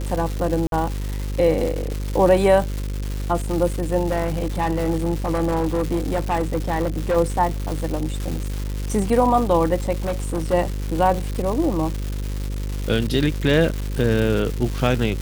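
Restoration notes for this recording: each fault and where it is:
mains buzz 50 Hz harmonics 11 −26 dBFS
surface crackle 410 per second −25 dBFS
0:00.67–0:00.72: drop-out 52 ms
0:04.08–0:07.17: clipping −16 dBFS
0:10.02–0:10.54: clipping −18.5 dBFS

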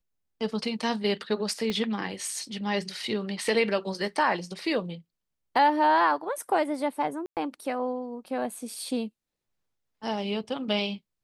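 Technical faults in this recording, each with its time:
0:01.70: click −17 dBFS
0:07.26–0:07.37: drop-out 108 ms

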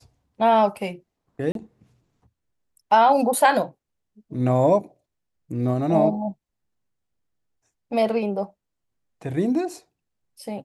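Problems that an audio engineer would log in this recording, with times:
0:01.52–0:01.55: drop-out 32 ms

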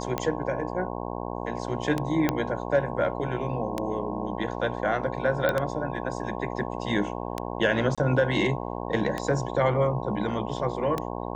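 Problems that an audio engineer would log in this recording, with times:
mains buzz 60 Hz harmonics 18 −33 dBFS
scratch tick 33 1/3 rpm −13 dBFS
0:02.29: click −9 dBFS
0:05.49: click −12 dBFS
0:07.95–0:07.98: drop-out 26 ms

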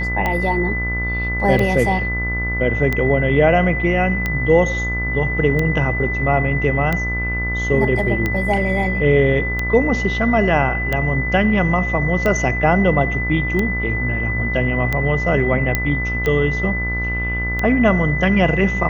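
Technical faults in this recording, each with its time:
mains buzz 60 Hz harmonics 27 −24 dBFS
scratch tick 45 rpm −8 dBFS
whistle 2,000 Hz −22 dBFS
0:15.75: click −3 dBFS

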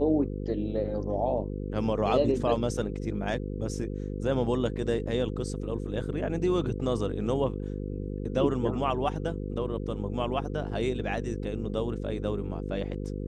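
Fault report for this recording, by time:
mains buzz 50 Hz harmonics 10 −34 dBFS

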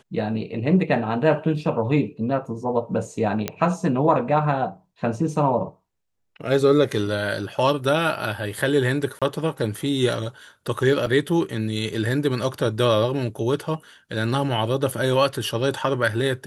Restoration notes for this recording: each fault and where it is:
0:03.48: click −8 dBFS
0:09.19–0:09.22: drop-out 26 ms
0:11.06–0:11.07: drop-out 5.2 ms

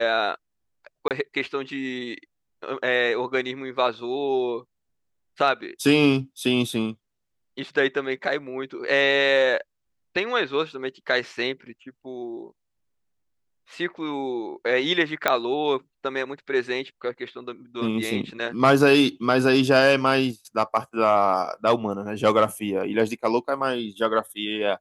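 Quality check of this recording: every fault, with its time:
0:01.08–0:01.11: drop-out 28 ms
0:15.28: click −6 dBFS

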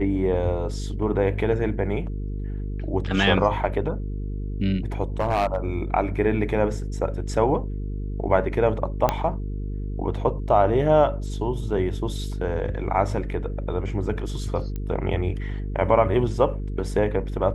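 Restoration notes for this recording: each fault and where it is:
mains buzz 50 Hz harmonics 9 −29 dBFS
0:05.20–0:05.58: clipping −17 dBFS
0:09.09: click −7 dBFS
0:14.76: click −19 dBFS

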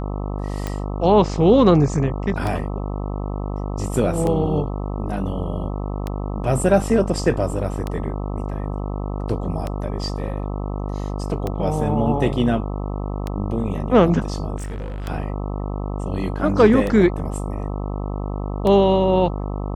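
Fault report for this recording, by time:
mains buzz 50 Hz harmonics 26 −26 dBFS
scratch tick 33 1/3 rpm −12 dBFS
0:14.56–0:15.08: clipping −25.5 dBFS

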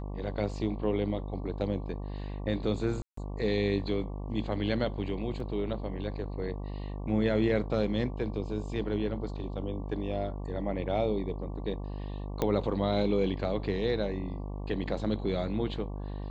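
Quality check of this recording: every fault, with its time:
mains buzz 50 Hz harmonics 23 −37 dBFS
0:03.02–0:03.17: drop-out 154 ms
0:05.40: drop-out 2.5 ms
0:12.42: click −15 dBFS

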